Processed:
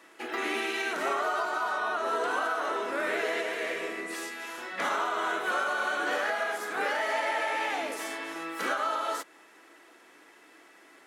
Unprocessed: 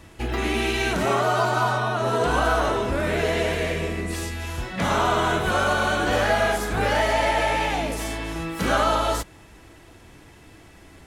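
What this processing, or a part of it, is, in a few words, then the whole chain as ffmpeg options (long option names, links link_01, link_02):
laptop speaker: -af "highpass=frequency=300:width=0.5412,highpass=frequency=300:width=1.3066,equalizer=frequency=1300:width_type=o:width=0.59:gain=5.5,equalizer=frequency=1900:width_type=o:width=0.53:gain=4.5,alimiter=limit=-13dB:level=0:latency=1:release=418,volume=-6.5dB"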